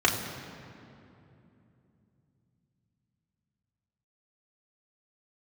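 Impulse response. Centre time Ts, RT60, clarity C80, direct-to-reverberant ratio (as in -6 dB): 53 ms, 2.9 s, 7.0 dB, -2.5 dB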